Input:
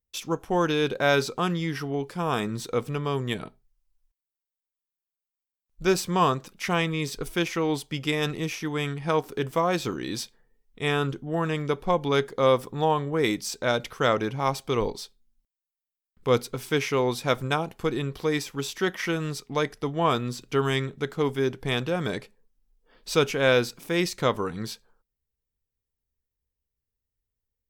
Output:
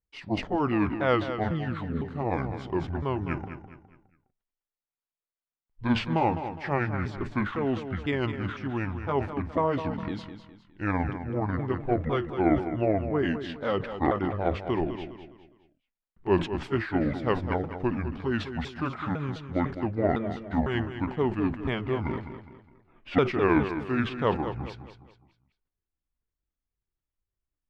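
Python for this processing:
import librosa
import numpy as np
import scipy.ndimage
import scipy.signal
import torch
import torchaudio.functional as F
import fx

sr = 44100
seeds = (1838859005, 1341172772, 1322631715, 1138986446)

p1 = fx.pitch_ramps(x, sr, semitones=-10.5, every_ms=504)
p2 = scipy.signal.sosfilt(scipy.signal.butter(2, 2100.0, 'lowpass', fs=sr, output='sos'), p1)
p3 = p2 + fx.echo_feedback(p2, sr, ms=206, feedback_pct=37, wet_db=-10, dry=0)
p4 = fx.sustainer(p3, sr, db_per_s=140.0)
y = p4 * librosa.db_to_amplitude(-1.0)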